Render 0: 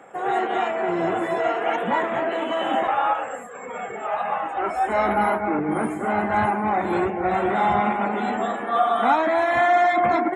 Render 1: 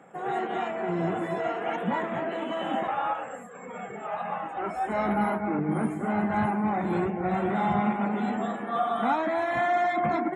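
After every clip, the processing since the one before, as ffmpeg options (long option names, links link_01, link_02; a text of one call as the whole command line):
ffmpeg -i in.wav -af "equalizer=frequency=170:width_type=o:width=1:gain=12,volume=-7.5dB" out.wav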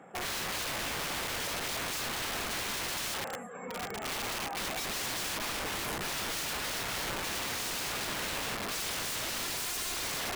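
ffmpeg -i in.wav -af "aeval=exprs='(mod(33.5*val(0)+1,2)-1)/33.5':channel_layout=same" out.wav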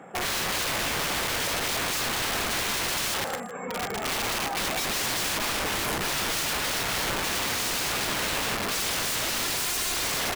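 ffmpeg -i in.wav -af "aecho=1:1:157:0.188,volume=7dB" out.wav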